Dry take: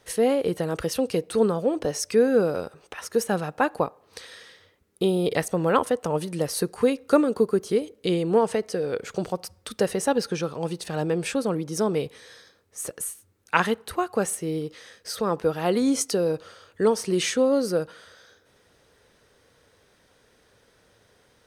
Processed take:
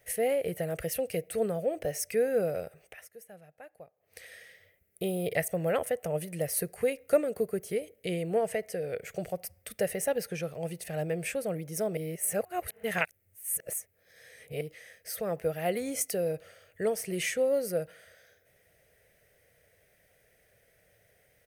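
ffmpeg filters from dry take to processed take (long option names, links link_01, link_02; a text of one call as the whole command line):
ffmpeg -i in.wav -filter_complex "[0:a]asplit=5[link_01][link_02][link_03][link_04][link_05];[link_01]atrim=end=3.11,asetpts=PTS-STARTPTS,afade=type=out:start_time=2.81:duration=0.3:silence=0.105925[link_06];[link_02]atrim=start=3.11:end=3.96,asetpts=PTS-STARTPTS,volume=-19.5dB[link_07];[link_03]atrim=start=3.96:end=11.972,asetpts=PTS-STARTPTS,afade=type=in:duration=0.3:silence=0.105925[link_08];[link_04]atrim=start=11.968:end=14.612,asetpts=PTS-STARTPTS,areverse[link_09];[link_05]atrim=start=14.608[link_10];[link_06][link_07][link_08]concat=n=3:v=0:a=1[link_11];[link_11][link_09]acrossfade=duration=0.004:curve1=hsin:curve2=hsin[link_12];[link_12][link_10]acrossfade=duration=0.004:curve1=hsin:curve2=hsin,firequalizer=gain_entry='entry(160,0);entry(250,-11);entry(650,5);entry(960,-16);entry(2000,6);entry(3700,-9);entry(14000,14)':delay=0.05:min_phase=1,volume=-5dB" out.wav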